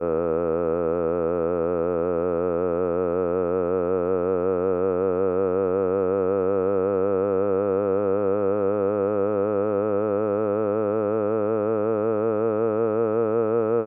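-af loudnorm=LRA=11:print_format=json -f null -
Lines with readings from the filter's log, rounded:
"input_i" : "-23.2",
"input_tp" : "-12.1",
"input_lra" : "1.1",
"input_thresh" : "-33.2",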